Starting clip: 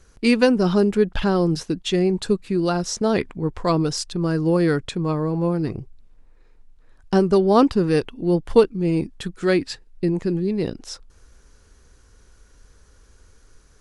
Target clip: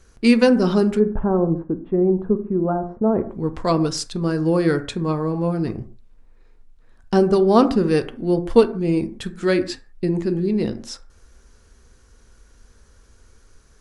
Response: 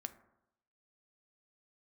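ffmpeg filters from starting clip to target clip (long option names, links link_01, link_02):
-filter_complex "[0:a]asplit=3[link_01][link_02][link_03];[link_01]afade=type=out:start_time=0.98:duration=0.02[link_04];[link_02]lowpass=frequency=1100:width=0.5412,lowpass=frequency=1100:width=1.3066,afade=type=in:start_time=0.98:duration=0.02,afade=type=out:start_time=3.31:duration=0.02[link_05];[link_03]afade=type=in:start_time=3.31:duration=0.02[link_06];[link_04][link_05][link_06]amix=inputs=3:normalize=0[link_07];[1:a]atrim=start_sample=2205,afade=type=out:start_time=0.22:duration=0.01,atrim=end_sample=10143[link_08];[link_07][link_08]afir=irnorm=-1:irlink=0,volume=4dB"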